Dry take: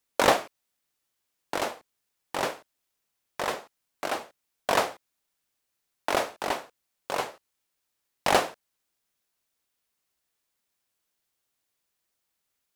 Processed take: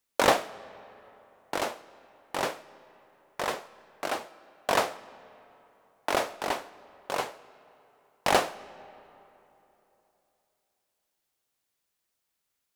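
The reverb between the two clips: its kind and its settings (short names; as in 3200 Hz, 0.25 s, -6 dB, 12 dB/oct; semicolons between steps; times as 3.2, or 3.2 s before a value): digital reverb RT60 3.3 s, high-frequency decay 0.6×, pre-delay 80 ms, DRR 19.5 dB; gain -1 dB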